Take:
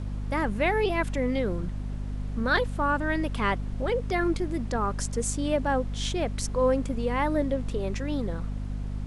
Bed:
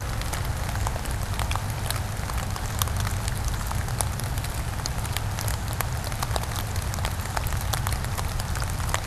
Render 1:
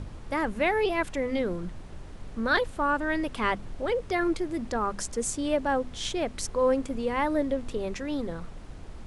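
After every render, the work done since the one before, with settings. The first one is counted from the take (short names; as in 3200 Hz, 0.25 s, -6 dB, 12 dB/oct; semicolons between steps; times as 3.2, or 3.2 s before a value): notches 50/100/150/200/250 Hz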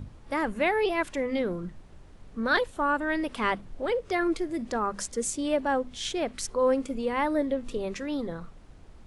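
noise print and reduce 8 dB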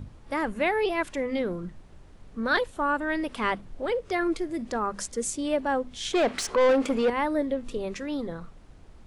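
6.13–7.1 overdrive pedal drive 23 dB, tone 2400 Hz, clips at -14 dBFS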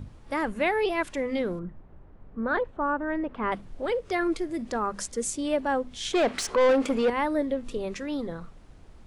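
1.59–3.52 LPF 1400 Hz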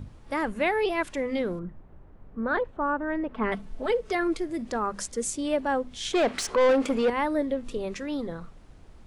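3.33–4.15 comb 4.6 ms, depth 67%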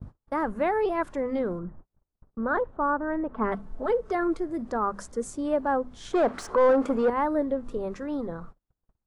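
gate -42 dBFS, range -38 dB; resonant high shelf 1800 Hz -10 dB, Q 1.5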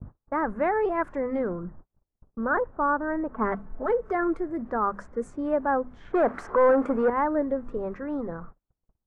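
low-pass opened by the level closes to 840 Hz, open at -25 dBFS; resonant high shelf 2600 Hz -11 dB, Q 1.5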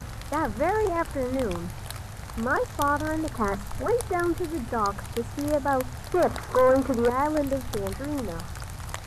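add bed -9 dB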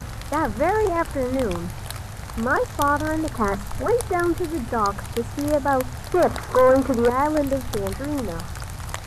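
gain +4 dB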